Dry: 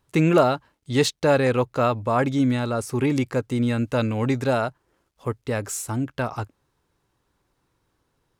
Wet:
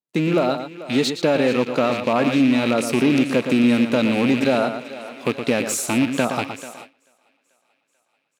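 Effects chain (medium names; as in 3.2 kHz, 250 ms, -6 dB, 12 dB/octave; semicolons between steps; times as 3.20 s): rattle on loud lows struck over -29 dBFS, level -19 dBFS; level rider gain up to 16 dB; fifteen-band graphic EQ 400 Hz -4 dB, 1 kHz -3 dB, 4 kHz +6 dB; compression 3:1, threshold -17 dBFS, peak gain reduction 7 dB; echo from a far wall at 20 m, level -9 dB; waveshaping leveller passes 1; high-pass 190 Hz 24 dB/octave; tilt shelf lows +4.5 dB, about 770 Hz; thinning echo 438 ms, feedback 72%, high-pass 360 Hz, level -14.5 dB; gate with hold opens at -21 dBFS; trim -3 dB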